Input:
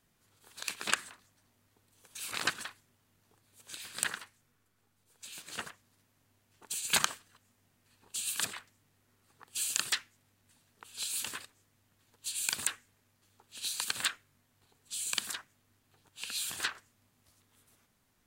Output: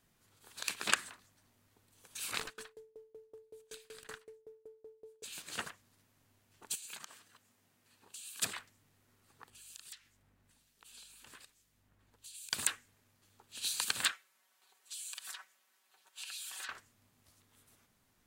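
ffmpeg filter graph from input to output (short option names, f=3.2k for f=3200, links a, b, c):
-filter_complex "[0:a]asettb=1/sr,asplit=3[a][b][c];[a]atrim=end=2.394[d];[b]atrim=start=2.39:end=5.24,asetpts=PTS-STARTPTS,afade=t=in:d=0.004:c=qsin,afade=t=out:st=2.846:d=0.004:c=qsin,aeval=exprs='val(0)+0.00708*sin(2*PI*440*n/s)':c=same,aeval=exprs='(tanh(15.8*val(0)+0.45)-tanh(0.45))/15.8':c=same,aeval=exprs='val(0)*pow(10,-28*if(lt(mod(5.3*n/s,1),2*abs(5.3)/1000),1-mod(5.3*n/s,1)/(2*abs(5.3)/1000),(mod(5.3*n/s,1)-2*abs(5.3)/1000)/(1-2*abs(5.3)/1000))/20)':c=same[e];[c]atrim=start=5.236[f];[d][e]acrossfade=d=0.004:c1=hsin:c2=qsin[g];[g][f]acrossfade=d=0.004:c1=qsin:c2=hsin,asettb=1/sr,asplit=3[h][i][j];[h]atrim=end=6.754[k];[i]atrim=start=6.75:end=8.42,asetpts=PTS-STARTPTS,afade=t=in:d=0.004:c=qsin,afade=t=out:st=1.666:d=0.004:c=qsin,highpass=f=170:p=1,acompressor=threshold=-46dB:ratio=6:attack=3.2:release=140:knee=1:detection=peak[l];[j]atrim=start=8.416[m];[k][l]acrossfade=d=0.004:c1=hsin:c2=qsin[n];[n][m]acrossfade=d=0.004:c1=qsin:c2=hsin,asettb=1/sr,asplit=3[o][p][q];[o]atrim=end=9.504[r];[p]atrim=start=9.5:end=12.53,asetpts=PTS-STARTPTS,afade=t=in:d=0.004:c=qsin,afade=t=out:st=3.026:d=0.004:c=qsin,acompressor=threshold=-47dB:ratio=6:attack=3.2:release=140:knee=1:detection=peak,aeval=exprs='val(0)+0.0002*(sin(2*PI*50*n/s)+sin(2*PI*2*50*n/s)/2+sin(2*PI*3*50*n/s)/3+sin(2*PI*4*50*n/s)/4+sin(2*PI*5*50*n/s)/5)':c=same,acrossover=split=2300[s][t];[s]aeval=exprs='val(0)*(1-0.7/2+0.7/2*cos(2*PI*1.2*n/s))':c=same[u];[t]aeval=exprs='val(0)*(1-0.7/2-0.7/2*cos(2*PI*1.2*n/s))':c=same[v];[u][v]amix=inputs=2:normalize=0[w];[q]atrim=start=12.526[x];[r][w]acrossfade=d=0.004:c1=hsin:c2=qsin[y];[y][x]acrossfade=d=0.004:c1=qsin:c2=hsin,asettb=1/sr,asplit=3[z][aa][ab];[z]atrim=end=14.124[ac];[aa]atrim=start=14.12:end=16.69,asetpts=PTS-STARTPTS,afade=t=in:d=0.004:c=qsin,afade=t=out:st=2.566:d=0.004:c=qsin,highpass=740,aecho=1:1:5.3:0.68,atrim=end_sample=113337,acompressor=threshold=-41dB:ratio=8:attack=3.2:release=140:knee=1:detection=peak[ad];[ab]atrim=start=16.686[ae];[ac][ad]acrossfade=d=0.004:c1=hsin:c2=qsin[af];[af][ae]acrossfade=d=0.004:c1=qsin:c2=hsin"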